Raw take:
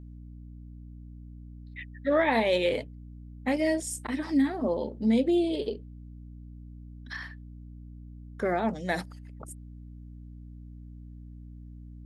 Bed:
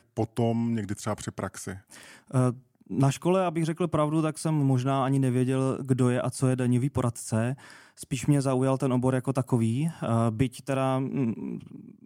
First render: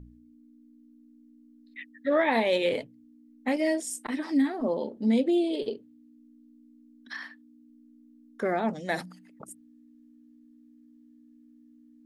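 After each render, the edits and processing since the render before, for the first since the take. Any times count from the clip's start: de-hum 60 Hz, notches 3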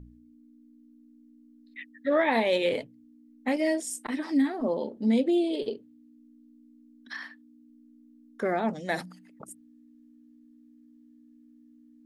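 nothing audible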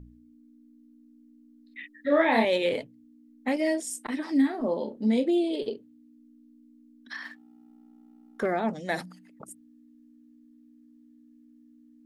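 1.8–2.45 doubler 31 ms -3 dB; 4.32–5.31 doubler 33 ms -10 dB; 7.25–8.46 sample leveller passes 1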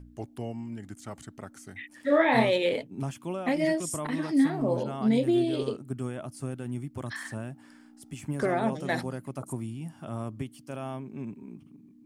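add bed -10.5 dB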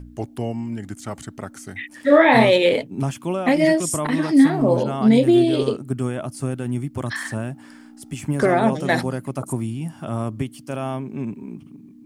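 gain +9.5 dB; limiter -3 dBFS, peak gain reduction 2.5 dB

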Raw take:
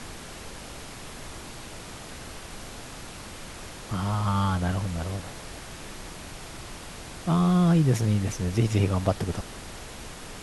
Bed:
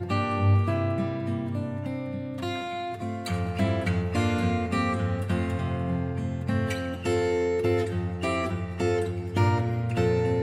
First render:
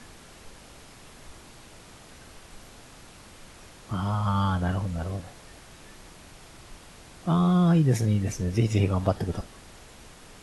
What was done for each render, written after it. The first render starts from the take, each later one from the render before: noise print and reduce 8 dB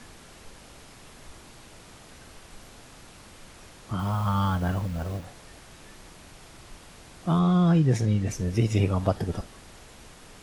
3.99–5.25 level-crossing sampler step -42.5 dBFS; 7.39–8.31 LPF 7600 Hz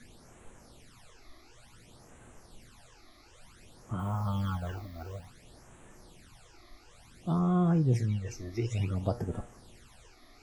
resonator 120 Hz, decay 0.35 s, harmonics all, mix 60%; phaser stages 12, 0.56 Hz, lowest notch 150–4800 Hz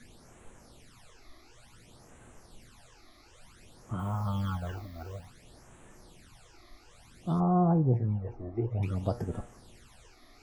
7.4–8.83 synth low-pass 830 Hz, resonance Q 3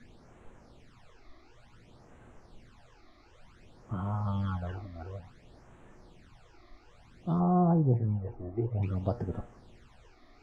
LPF 6300 Hz 12 dB/oct; high shelf 3200 Hz -10 dB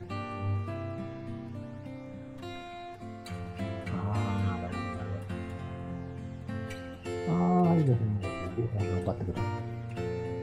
add bed -10.5 dB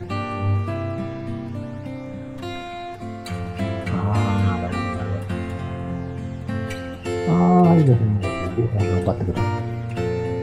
gain +10.5 dB

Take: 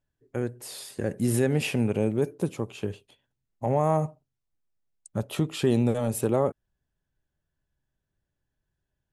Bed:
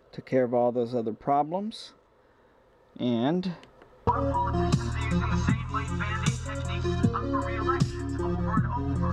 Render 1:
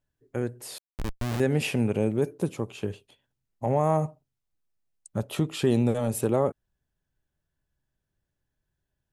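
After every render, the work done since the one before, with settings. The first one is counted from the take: 0.78–1.4 Schmitt trigger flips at -23.5 dBFS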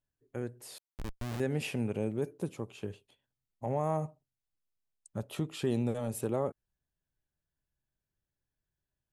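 gain -8 dB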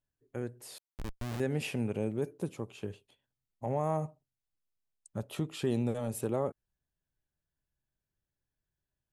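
nothing audible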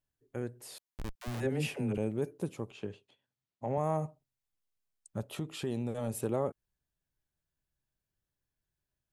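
1.15–1.98 dispersion lows, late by 65 ms, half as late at 400 Hz; 2.71–3.78 BPF 110–5900 Hz; 5.23–5.98 compressor 1.5:1, threshold -37 dBFS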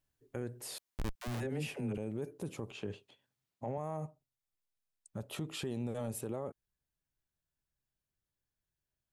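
vocal rider within 4 dB 0.5 s; limiter -29 dBFS, peak gain reduction 8.5 dB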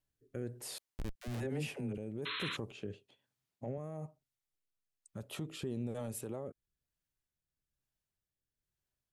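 rotary speaker horn 1.1 Hz; 2.25–2.57 painted sound noise 960–4200 Hz -40 dBFS

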